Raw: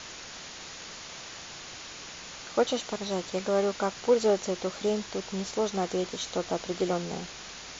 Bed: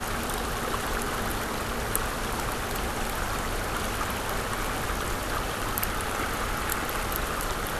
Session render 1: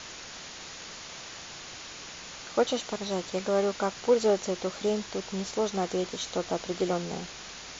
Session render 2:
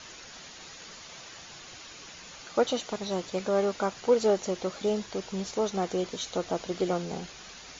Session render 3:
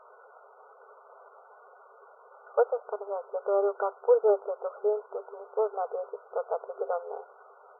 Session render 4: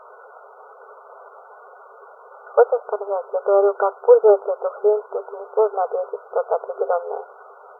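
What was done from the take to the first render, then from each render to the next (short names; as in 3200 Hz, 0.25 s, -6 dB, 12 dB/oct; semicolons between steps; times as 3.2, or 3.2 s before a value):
nothing audible
denoiser 7 dB, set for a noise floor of -44 dBFS
FFT band-pass 390–1500 Hz; tilt -1.5 dB/oct
gain +10 dB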